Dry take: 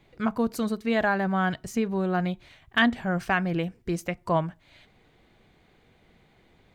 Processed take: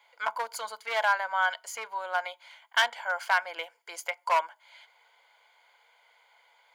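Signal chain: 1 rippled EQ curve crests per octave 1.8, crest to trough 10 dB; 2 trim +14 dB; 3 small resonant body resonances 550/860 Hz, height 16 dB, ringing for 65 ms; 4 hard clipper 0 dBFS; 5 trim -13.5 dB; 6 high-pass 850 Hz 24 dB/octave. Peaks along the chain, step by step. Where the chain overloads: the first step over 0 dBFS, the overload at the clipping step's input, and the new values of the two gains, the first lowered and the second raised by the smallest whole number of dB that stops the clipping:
-8.5 dBFS, +5.5 dBFS, +7.0 dBFS, 0.0 dBFS, -13.5 dBFS, -10.0 dBFS; step 2, 7.0 dB; step 2 +7 dB, step 5 -6.5 dB

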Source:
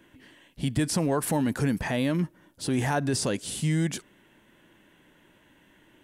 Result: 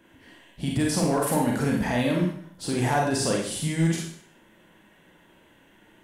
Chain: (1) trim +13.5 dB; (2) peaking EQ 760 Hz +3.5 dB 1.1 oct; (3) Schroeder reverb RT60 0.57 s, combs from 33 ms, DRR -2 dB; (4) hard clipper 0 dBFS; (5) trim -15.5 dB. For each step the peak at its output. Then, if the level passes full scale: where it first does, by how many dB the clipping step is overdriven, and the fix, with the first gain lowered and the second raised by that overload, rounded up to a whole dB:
-1.0 dBFS, +0.5 dBFS, +5.0 dBFS, 0.0 dBFS, -15.5 dBFS; step 2, 5.0 dB; step 1 +8.5 dB, step 5 -10.5 dB

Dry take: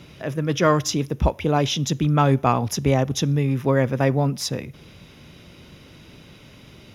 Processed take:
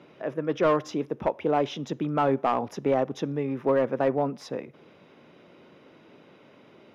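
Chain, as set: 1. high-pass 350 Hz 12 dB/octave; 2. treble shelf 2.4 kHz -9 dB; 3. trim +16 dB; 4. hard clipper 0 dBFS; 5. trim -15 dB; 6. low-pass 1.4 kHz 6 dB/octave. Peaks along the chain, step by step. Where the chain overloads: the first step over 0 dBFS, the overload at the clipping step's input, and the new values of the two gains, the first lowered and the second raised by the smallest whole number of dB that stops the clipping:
-5.0 dBFS, -6.5 dBFS, +9.5 dBFS, 0.0 dBFS, -15.0 dBFS, -15.0 dBFS; step 3, 9.5 dB; step 3 +6 dB, step 5 -5 dB

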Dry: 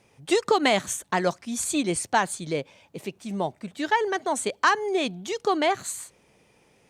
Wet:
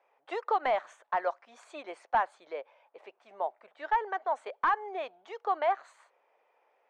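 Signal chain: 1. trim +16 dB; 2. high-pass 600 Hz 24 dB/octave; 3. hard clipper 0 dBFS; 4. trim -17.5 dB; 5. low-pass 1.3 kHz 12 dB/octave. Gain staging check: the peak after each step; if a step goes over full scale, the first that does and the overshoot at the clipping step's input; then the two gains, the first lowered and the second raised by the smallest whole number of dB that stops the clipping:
+7.0 dBFS, +9.0 dBFS, 0.0 dBFS, -17.5 dBFS, -17.0 dBFS; step 1, 9.0 dB; step 1 +7 dB, step 4 -8.5 dB

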